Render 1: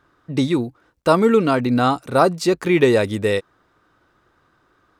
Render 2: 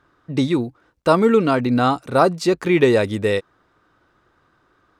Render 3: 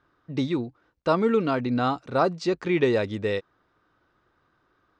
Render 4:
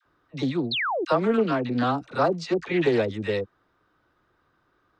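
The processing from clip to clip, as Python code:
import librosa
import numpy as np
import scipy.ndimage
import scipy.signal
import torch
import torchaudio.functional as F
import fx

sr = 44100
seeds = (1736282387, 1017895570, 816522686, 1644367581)

y1 = fx.high_shelf(x, sr, hz=9700.0, db=-7.0)
y2 = scipy.signal.sosfilt(scipy.signal.butter(4, 6300.0, 'lowpass', fs=sr, output='sos'), y1)
y2 = y2 * librosa.db_to_amplitude(-7.0)
y3 = fx.dispersion(y2, sr, late='lows', ms=57.0, hz=680.0)
y3 = fx.spec_paint(y3, sr, seeds[0], shape='fall', start_s=0.71, length_s=0.34, low_hz=300.0, high_hz=4500.0, level_db=-26.0)
y3 = fx.doppler_dist(y3, sr, depth_ms=0.15)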